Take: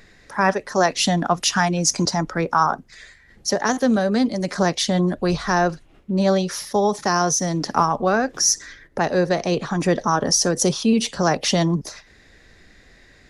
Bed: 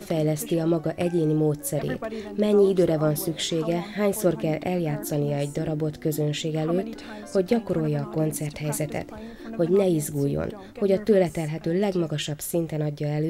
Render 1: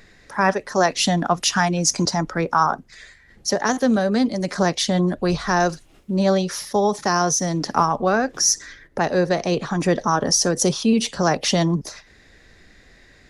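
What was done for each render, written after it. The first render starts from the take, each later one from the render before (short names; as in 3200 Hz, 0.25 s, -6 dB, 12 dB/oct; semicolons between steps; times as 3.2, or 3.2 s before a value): 5.6–6.17 tone controls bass -1 dB, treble +12 dB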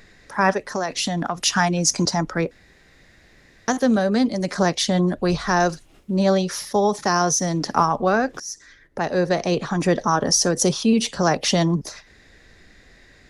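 0.65–1.39 compressor 10:1, threshold -19 dBFS; 2.51–3.68 room tone; 8.4–9.35 fade in, from -20 dB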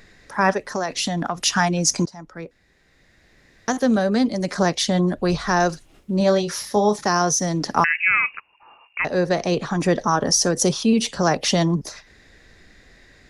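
2.06–3.94 fade in, from -21.5 dB; 6.18–6.96 doubler 24 ms -8 dB; 7.84–9.05 inverted band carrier 2800 Hz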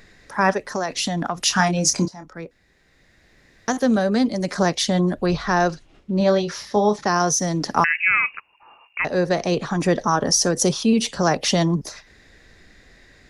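1.45–2.33 doubler 27 ms -8 dB; 5.26–7.2 LPF 5100 Hz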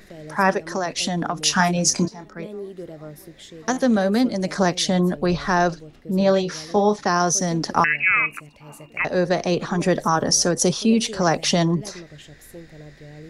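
add bed -15.5 dB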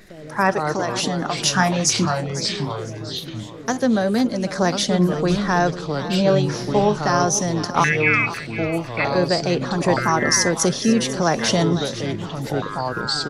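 feedback echo 0.5 s, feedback 27%, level -14 dB; echoes that change speed 87 ms, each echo -4 st, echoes 2, each echo -6 dB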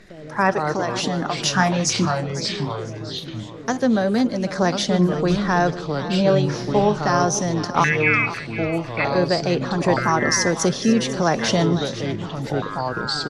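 air absorption 52 m; echo 0.148 s -23 dB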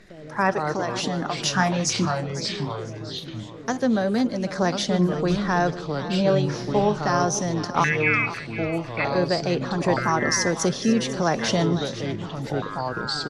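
gain -3 dB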